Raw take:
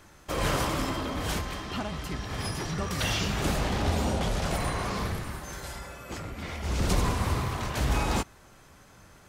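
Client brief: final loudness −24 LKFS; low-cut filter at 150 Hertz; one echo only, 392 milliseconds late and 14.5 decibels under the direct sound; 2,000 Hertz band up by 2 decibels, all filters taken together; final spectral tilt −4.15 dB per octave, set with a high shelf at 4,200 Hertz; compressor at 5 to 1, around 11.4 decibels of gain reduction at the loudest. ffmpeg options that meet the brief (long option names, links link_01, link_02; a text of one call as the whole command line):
ffmpeg -i in.wav -af "highpass=150,equalizer=frequency=2000:width_type=o:gain=3.5,highshelf=frequency=4200:gain=-4.5,acompressor=threshold=-38dB:ratio=5,aecho=1:1:392:0.188,volume=16.5dB" out.wav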